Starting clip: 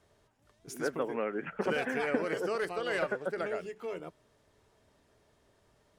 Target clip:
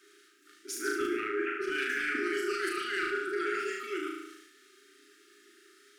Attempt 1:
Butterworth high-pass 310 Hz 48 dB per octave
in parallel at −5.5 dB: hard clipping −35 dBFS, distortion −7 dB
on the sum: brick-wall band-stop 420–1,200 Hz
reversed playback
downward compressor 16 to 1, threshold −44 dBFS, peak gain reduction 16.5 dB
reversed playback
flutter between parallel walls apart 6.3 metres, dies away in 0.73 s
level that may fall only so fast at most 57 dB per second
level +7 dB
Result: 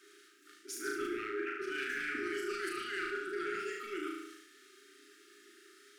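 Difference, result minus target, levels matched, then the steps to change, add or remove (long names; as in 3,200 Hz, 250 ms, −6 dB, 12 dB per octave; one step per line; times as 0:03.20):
hard clipping: distortion +10 dB; downward compressor: peak gain reduction +4 dB
change: hard clipping −27 dBFS, distortion −17 dB
change: downward compressor 16 to 1, threshold −38 dBFS, peak gain reduction 12 dB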